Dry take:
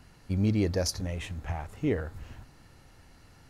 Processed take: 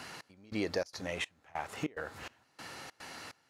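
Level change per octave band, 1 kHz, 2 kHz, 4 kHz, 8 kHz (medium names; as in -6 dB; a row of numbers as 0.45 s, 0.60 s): +1.5 dB, +2.5 dB, -3.5 dB, -9.5 dB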